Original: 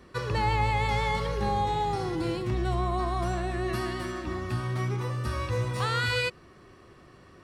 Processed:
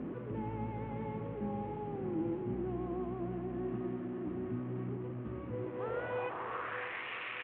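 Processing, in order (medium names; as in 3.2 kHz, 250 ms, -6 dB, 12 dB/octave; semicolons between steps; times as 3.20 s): one-bit delta coder 16 kbps, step -26.5 dBFS; band-pass sweep 250 Hz -> 2.4 kHz, 5.47–7.06 s; on a send: feedback delay 613 ms, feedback 34%, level -9 dB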